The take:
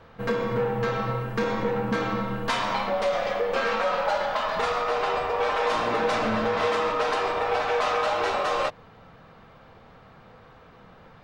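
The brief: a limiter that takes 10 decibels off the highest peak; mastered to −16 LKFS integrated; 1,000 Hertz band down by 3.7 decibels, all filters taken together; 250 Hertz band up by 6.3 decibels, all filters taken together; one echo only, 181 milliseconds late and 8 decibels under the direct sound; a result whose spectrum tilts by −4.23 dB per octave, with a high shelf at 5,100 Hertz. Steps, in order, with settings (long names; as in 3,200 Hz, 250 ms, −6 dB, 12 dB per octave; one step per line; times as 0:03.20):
parametric band 250 Hz +8 dB
parametric band 1,000 Hz −5 dB
high-shelf EQ 5,100 Hz −6.5 dB
brickwall limiter −21 dBFS
single-tap delay 181 ms −8 dB
level +13 dB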